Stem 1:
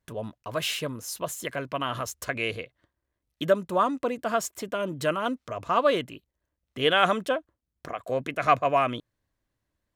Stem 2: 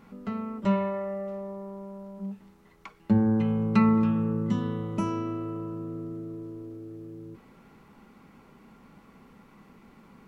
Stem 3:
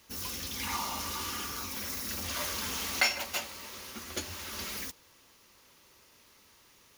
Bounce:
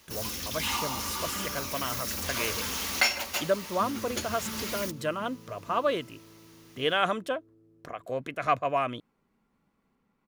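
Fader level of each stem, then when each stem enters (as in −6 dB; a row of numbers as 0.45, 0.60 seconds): −4.5, −19.5, +2.5 decibels; 0.00, 0.70, 0.00 seconds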